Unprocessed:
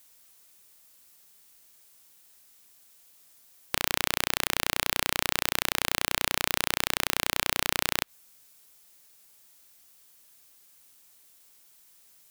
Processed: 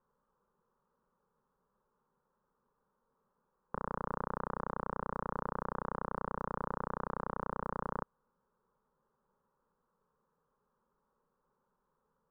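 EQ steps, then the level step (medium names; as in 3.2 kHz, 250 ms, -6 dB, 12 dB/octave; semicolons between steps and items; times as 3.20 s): low-pass 1.2 kHz 24 dB/octave; distance through air 220 m; static phaser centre 460 Hz, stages 8; +1.0 dB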